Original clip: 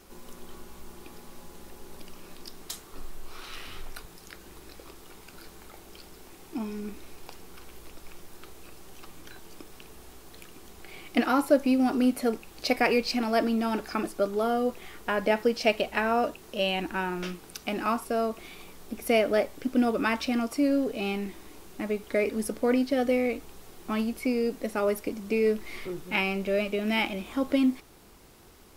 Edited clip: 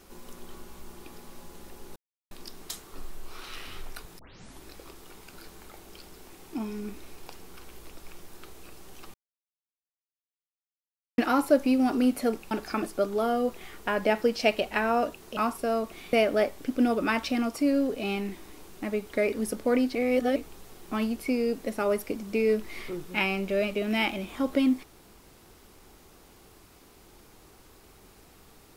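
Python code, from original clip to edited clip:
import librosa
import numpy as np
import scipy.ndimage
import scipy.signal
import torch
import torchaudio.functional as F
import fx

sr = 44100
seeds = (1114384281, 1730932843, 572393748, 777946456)

y = fx.edit(x, sr, fx.silence(start_s=1.96, length_s=0.35),
    fx.tape_start(start_s=4.19, length_s=0.44),
    fx.silence(start_s=9.14, length_s=2.04),
    fx.cut(start_s=12.51, length_s=1.21),
    fx.cut(start_s=16.58, length_s=1.26),
    fx.cut(start_s=18.6, length_s=0.5),
    fx.reverse_span(start_s=22.92, length_s=0.41), tone=tone)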